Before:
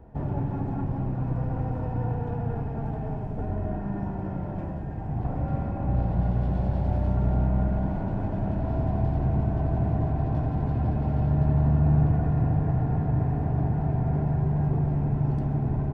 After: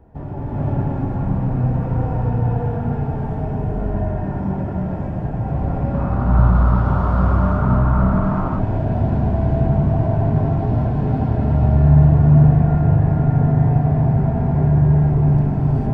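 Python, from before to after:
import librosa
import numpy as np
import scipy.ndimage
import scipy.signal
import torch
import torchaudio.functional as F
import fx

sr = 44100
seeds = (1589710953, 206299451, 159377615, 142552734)

y = fx.dmg_noise_band(x, sr, seeds[0], low_hz=860.0, high_hz=1400.0, level_db=-37.0, at=(5.93, 8.13), fade=0.02)
y = fx.rev_gated(y, sr, seeds[1], gate_ms=490, shape='rising', drr_db=-7.5)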